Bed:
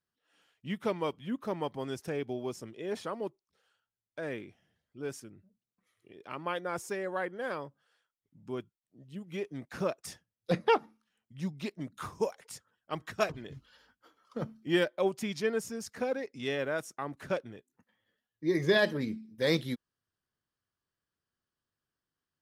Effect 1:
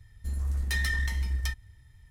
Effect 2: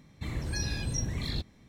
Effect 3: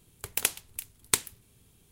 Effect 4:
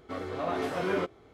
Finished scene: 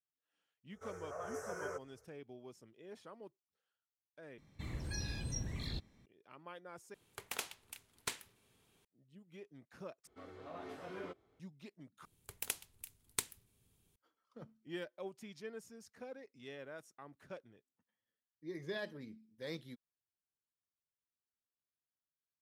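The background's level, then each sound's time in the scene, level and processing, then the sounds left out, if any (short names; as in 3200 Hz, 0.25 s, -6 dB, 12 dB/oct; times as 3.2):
bed -16.5 dB
0.72 add 4 -12 dB + EQ curve 110 Hz 0 dB, 220 Hz -16 dB, 310 Hz -21 dB, 440 Hz +4 dB, 820 Hz -5 dB, 1500 Hz +4 dB, 2200 Hz -9 dB, 4000 Hz -29 dB, 5700 Hz +14 dB, 13000 Hz +7 dB
4.38 replace with 2 -8.5 dB
6.94 replace with 3 -14.5 dB + overdrive pedal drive 20 dB, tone 2200 Hz, clips at -2.5 dBFS
10.07 replace with 4 -17 dB
12.05 replace with 3 -12.5 dB
not used: 1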